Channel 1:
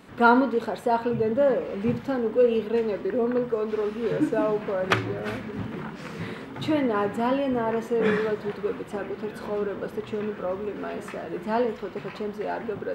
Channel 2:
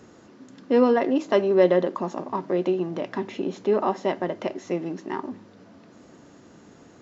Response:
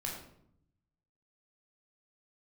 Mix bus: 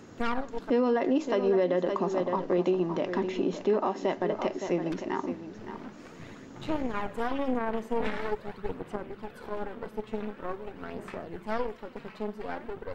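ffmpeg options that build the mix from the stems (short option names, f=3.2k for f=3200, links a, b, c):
-filter_complex "[0:a]aeval=exprs='0.75*(cos(1*acos(clip(val(0)/0.75,-1,1)))-cos(1*PI/2))+0.266*(cos(4*acos(clip(val(0)/0.75,-1,1)))-cos(4*PI/2))+0.0473*(cos(7*acos(clip(val(0)/0.75,-1,1)))-cos(7*PI/2))+0.0473*(cos(8*acos(clip(val(0)/0.75,-1,1)))-cos(8*PI/2))':c=same,aphaser=in_gain=1:out_gain=1:delay=4.7:decay=0.43:speed=0.45:type=sinusoidal,volume=-5dB[a];[1:a]volume=-0.5dB,asplit=3[b][c][d];[c]volume=-11dB[e];[d]apad=whole_len=570953[f];[a][f]sidechaincompress=threshold=-50dB:ratio=10:attack=16:release=307[g];[e]aecho=0:1:565:1[h];[g][b][h]amix=inputs=3:normalize=0,alimiter=limit=-17dB:level=0:latency=1:release=153"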